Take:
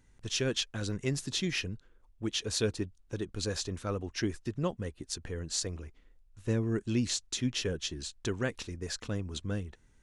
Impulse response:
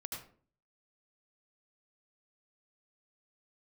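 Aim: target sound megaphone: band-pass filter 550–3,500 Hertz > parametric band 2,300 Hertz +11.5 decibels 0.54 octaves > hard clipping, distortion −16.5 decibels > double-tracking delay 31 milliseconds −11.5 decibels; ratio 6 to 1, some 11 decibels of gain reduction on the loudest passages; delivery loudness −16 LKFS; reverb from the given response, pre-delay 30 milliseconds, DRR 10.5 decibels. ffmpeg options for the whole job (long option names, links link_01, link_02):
-filter_complex "[0:a]acompressor=threshold=-37dB:ratio=6,asplit=2[link_01][link_02];[1:a]atrim=start_sample=2205,adelay=30[link_03];[link_02][link_03]afir=irnorm=-1:irlink=0,volume=-9dB[link_04];[link_01][link_04]amix=inputs=2:normalize=0,highpass=550,lowpass=3500,equalizer=frequency=2300:width_type=o:width=0.54:gain=11.5,asoftclip=type=hard:threshold=-32.5dB,asplit=2[link_05][link_06];[link_06]adelay=31,volume=-11.5dB[link_07];[link_05][link_07]amix=inputs=2:normalize=0,volume=28dB"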